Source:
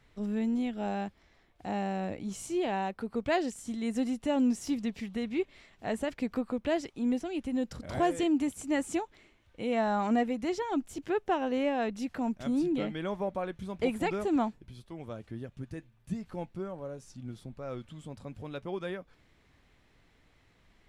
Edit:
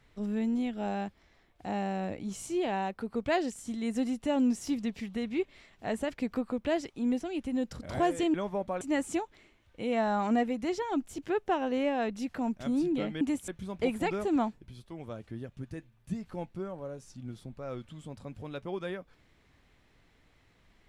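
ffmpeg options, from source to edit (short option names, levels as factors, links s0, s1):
-filter_complex "[0:a]asplit=5[s0][s1][s2][s3][s4];[s0]atrim=end=8.342[s5];[s1]atrim=start=13.008:end=13.482[s6];[s2]atrim=start=8.608:end=13.012[s7];[s3]atrim=start=8.338:end=8.612[s8];[s4]atrim=start=13.478[s9];[s5][s6]acrossfade=d=0.004:c1=hsin:c2=hsin[s10];[s10][s7]acrossfade=d=0.004:c1=hsin:c2=hsin[s11];[s11][s8]acrossfade=d=0.004:c1=hsin:c2=hsin[s12];[s12][s9]acrossfade=d=0.004:c1=hsin:c2=hsin"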